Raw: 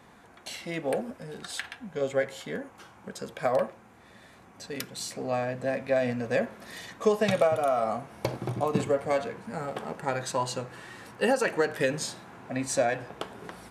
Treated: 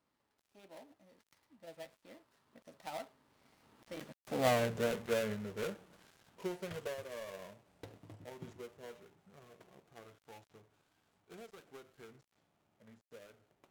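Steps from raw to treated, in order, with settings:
gap after every zero crossing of 0.22 ms
source passing by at 0:04.49, 58 m/s, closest 15 metres

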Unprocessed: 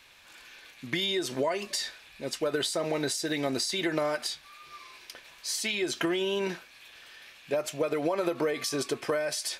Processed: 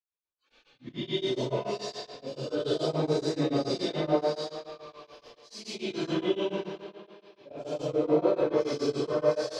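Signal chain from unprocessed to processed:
random phases in long frames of 200 ms
high-frequency loss of the air 200 metres
noise gate −52 dBFS, range −15 dB
volume swells 111 ms
parametric band 1,900 Hz −13.5 dB 1.1 octaves
reverb whose tail is shaped and stops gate 180 ms rising, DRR −5.5 dB
noise reduction from a noise print of the clip's start 28 dB
tape delay 113 ms, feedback 76%, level −7 dB, low-pass 5,700 Hz
tremolo along a rectified sine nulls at 7 Hz

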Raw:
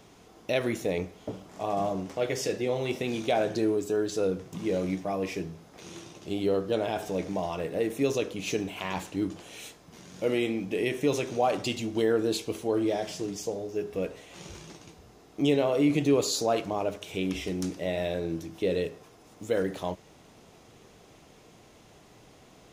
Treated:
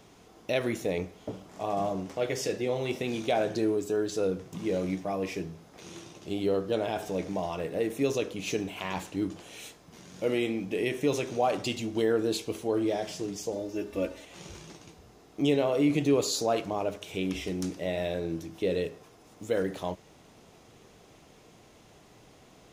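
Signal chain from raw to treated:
0:13.52–0:14.25: comb filter 3.4 ms, depth 98%
level −1 dB

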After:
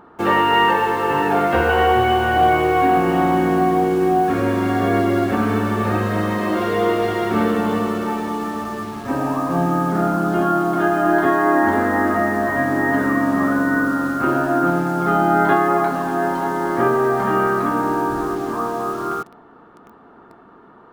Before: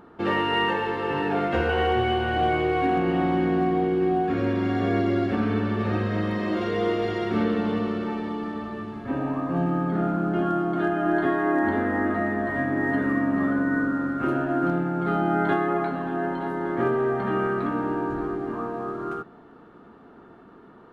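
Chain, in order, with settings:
parametric band 1,000 Hz +7 dB 1.5 octaves
in parallel at −5 dB: bit reduction 6 bits

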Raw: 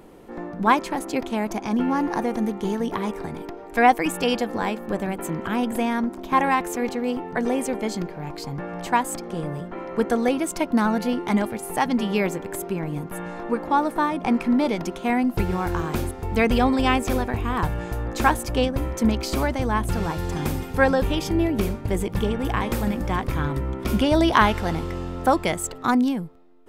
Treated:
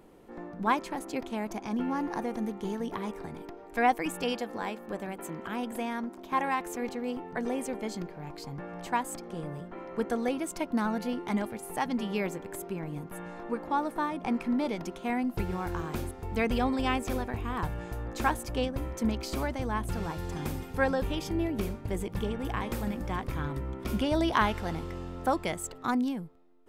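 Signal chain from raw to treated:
0:04.32–0:06.66: low-shelf EQ 150 Hz −9 dB
level −8.5 dB

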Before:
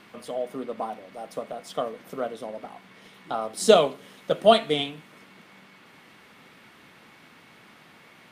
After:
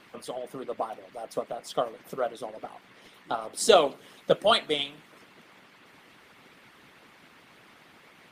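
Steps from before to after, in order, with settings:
harmonic and percussive parts rebalanced harmonic −15 dB
level +2.5 dB

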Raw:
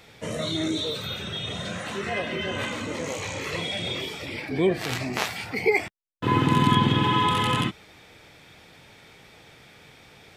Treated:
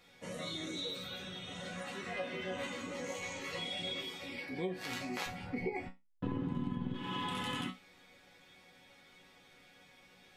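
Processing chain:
0:05.26–0:06.94: spectral tilt −4 dB per octave
resonators tuned to a chord F#3 sus4, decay 0.21 s
downward compressor 10 to 1, threshold −37 dBFS, peak gain reduction 15 dB
level +4 dB

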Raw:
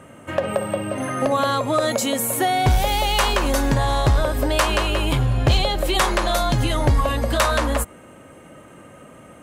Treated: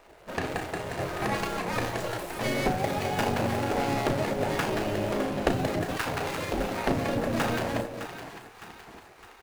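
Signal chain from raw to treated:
running median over 41 samples
double-tracking delay 34 ms −8.5 dB
in parallel at −1.5 dB: brickwall limiter −18.5 dBFS, peak gain reduction 10 dB
on the sum: echo with a time of its own for lows and highs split 490 Hz, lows 217 ms, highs 610 ms, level −10 dB
gate on every frequency bin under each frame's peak −10 dB weak
level −3 dB

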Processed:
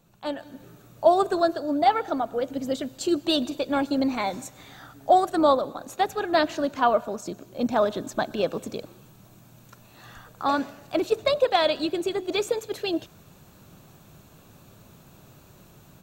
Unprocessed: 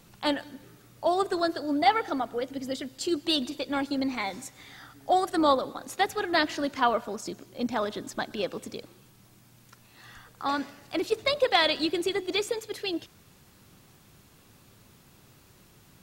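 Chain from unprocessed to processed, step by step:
automatic gain control gain up to 12 dB
thirty-one-band graphic EQ 160 Hz +4 dB, 630 Hz +6 dB, 2,000 Hz −8 dB, 3,150 Hz −4 dB, 5,000 Hz −8 dB, 10,000 Hz −9 dB
level −7 dB

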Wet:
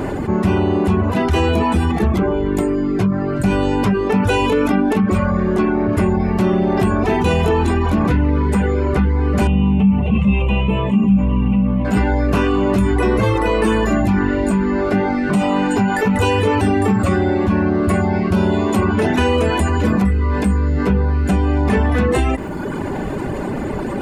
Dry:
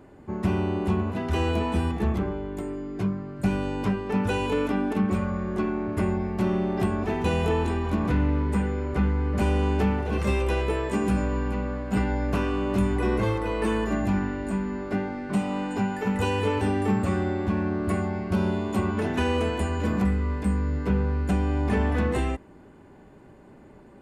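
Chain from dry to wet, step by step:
reverb reduction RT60 0.75 s
0:09.47–0:11.85: drawn EQ curve 100 Hz 0 dB, 200 Hz +13 dB, 320 Hz −11 dB, 750 Hz −6 dB, 1,100 Hz −5 dB, 1,600 Hz −21 dB, 2,800 Hz +4 dB, 4,700 Hz −27 dB, 6,800 Hz −22 dB, 11,000 Hz −25 dB
envelope flattener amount 70%

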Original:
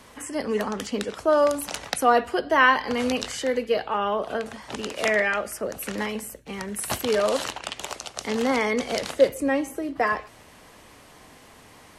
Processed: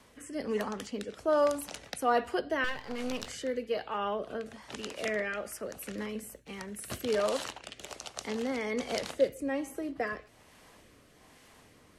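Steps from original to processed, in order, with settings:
0:02.64–0:03.27: gain on one half-wave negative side −12 dB
rotating-speaker cabinet horn 1.2 Hz
level −6 dB

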